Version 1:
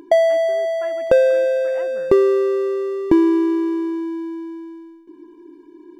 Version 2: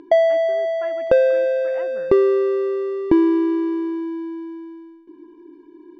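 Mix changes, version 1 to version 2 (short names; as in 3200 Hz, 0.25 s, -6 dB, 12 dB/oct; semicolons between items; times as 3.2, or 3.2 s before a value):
background: send off; master: add LPF 4100 Hz 12 dB/oct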